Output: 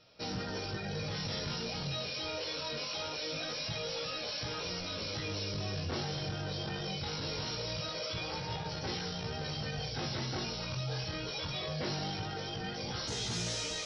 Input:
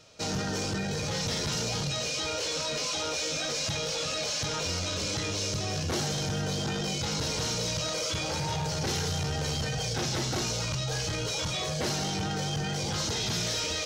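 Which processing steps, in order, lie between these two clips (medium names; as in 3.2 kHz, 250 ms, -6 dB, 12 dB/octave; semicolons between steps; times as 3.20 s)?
chorus 0.23 Hz, delay 16.5 ms, depth 6.1 ms; brick-wall FIR low-pass 5.8 kHz, from 13.07 s 11 kHz; trim -3 dB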